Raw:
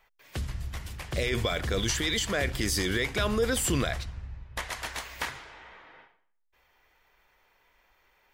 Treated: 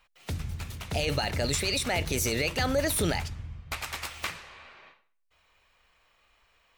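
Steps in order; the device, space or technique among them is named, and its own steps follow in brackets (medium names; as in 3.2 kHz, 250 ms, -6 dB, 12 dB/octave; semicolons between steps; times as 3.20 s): nightcore (tape speed +23%)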